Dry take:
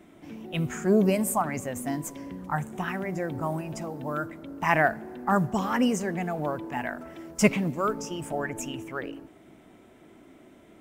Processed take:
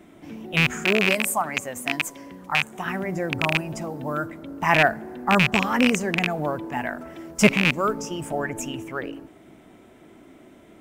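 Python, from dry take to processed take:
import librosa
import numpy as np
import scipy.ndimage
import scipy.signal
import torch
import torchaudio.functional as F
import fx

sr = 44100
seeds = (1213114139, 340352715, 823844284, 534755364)

y = fx.rattle_buzz(x, sr, strikes_db=-29.0, level_db=-10.0)
y = fx.low_shelf(y, sr, hz=330.0, db=-11.0, at=(0.84, 2.86))
y = F.gain(torch.from_numpy(y), 3.5).numpy()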